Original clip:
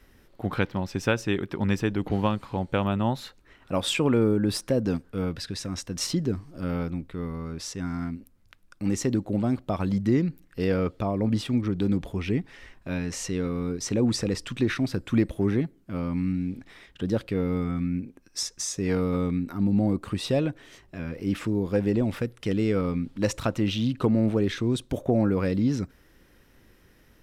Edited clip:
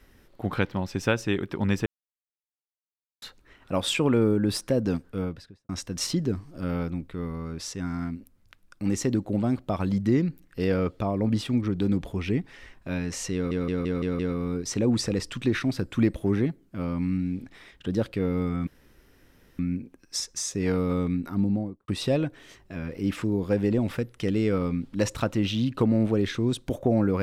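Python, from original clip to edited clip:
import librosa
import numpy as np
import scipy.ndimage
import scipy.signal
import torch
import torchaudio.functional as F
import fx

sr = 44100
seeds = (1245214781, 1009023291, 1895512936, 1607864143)

y = fx.studio_fade_out(x, sr, start_s=5.08, length_s=0.61)
y = fx.studio_fade_out(y, sr, start_s=19.57, length_s=0.54)
y = fx.edit(y, sr, fx.silence(start_s=1.86, length_s=1.36),
    fx.stutter(start_s=13.34, slice_s=0.17, count=6),
    fx.insert_room_tone(at_s=17.82, length_s=0.92), tone=tone)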